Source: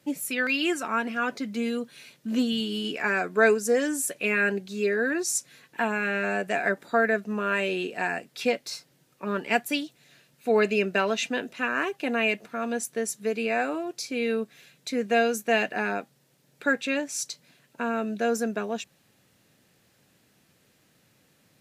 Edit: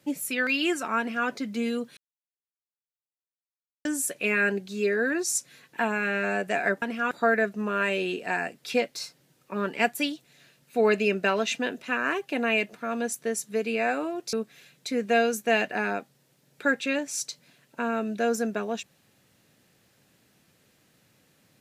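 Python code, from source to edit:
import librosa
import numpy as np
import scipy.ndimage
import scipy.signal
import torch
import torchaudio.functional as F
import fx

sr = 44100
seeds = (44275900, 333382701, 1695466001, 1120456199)

y = fx.edit(x, sr, fx.duplicate(start_s=0.99, length_s=0.29, to_s=6.82),
    fx.silence(start_s=1.97, length_s=1.88),
    fx.cut(start_s=14.04, length_s=0.3), tone=tone)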